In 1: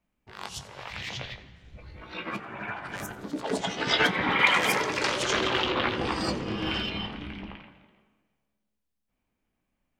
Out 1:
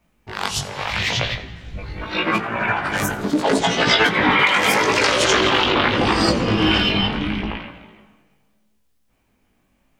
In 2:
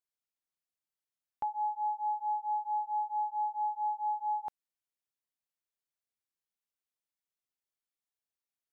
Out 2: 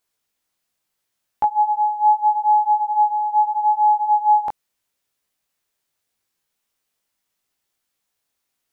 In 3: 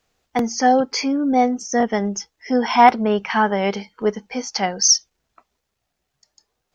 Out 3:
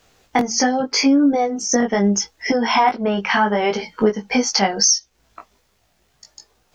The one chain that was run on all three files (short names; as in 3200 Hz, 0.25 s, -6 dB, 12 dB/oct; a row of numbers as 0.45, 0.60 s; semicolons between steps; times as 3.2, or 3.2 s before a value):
compressor 6:1, threshold -28 dBFS; chorus 0.78 Hz, delay 17.5 ms, depth 3.1 ms; match loudness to -18 LUFS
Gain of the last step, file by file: +18.0, +19.5, +16.0 dB